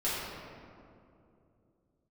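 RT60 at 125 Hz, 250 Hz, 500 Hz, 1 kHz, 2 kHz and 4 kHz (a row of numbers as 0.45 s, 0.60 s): 3.5 s, 3.4 s, 3.0 s, 2.3 s, 1.7 s, 1.2 s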